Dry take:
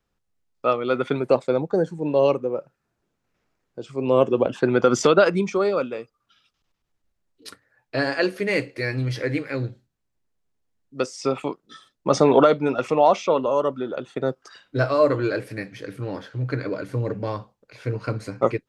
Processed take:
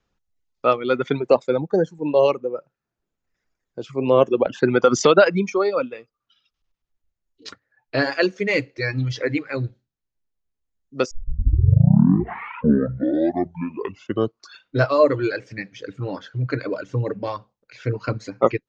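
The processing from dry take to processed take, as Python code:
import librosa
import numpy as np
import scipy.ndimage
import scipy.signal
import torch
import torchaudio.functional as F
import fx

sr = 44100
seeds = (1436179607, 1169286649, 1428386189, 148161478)

y = fx.edit(x, sr, fx.tape_start(start_s=11.11, length_s=3.7), tone=tone)
y = scipy.signal.sosfilt(scipy.signal.ellip(4, 1.0, 40, 6900.0, 'lowpass', fs=sr, output='sos'), y)
y = fx.dereverb_blind(y, sr, rt60_s=1.9)
y = y * librosa.db_to_amplitude(4.0)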